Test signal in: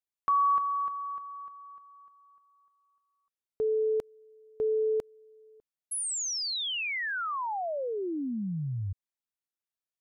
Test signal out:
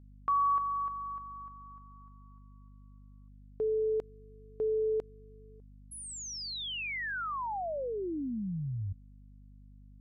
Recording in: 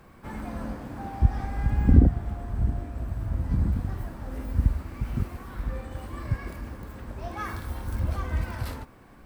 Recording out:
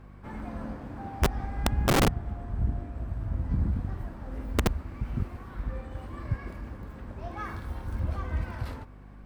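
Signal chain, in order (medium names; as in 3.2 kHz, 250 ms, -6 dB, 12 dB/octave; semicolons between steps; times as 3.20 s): low-pass 3.2 kHz 6 dB/octave; integer overflow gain 13.5 dB; hum 50 Hz, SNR 18 dB; trim -2.5 dB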